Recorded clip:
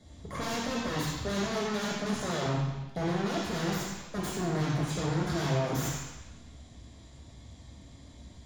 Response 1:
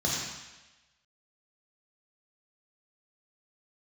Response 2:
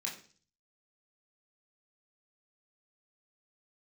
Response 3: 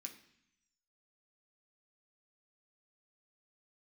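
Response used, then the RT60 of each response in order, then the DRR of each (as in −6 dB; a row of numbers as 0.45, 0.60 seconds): 1; 1.1, 0.40, 0.70 seconds; −4.0, −3.5, 1.0 decibels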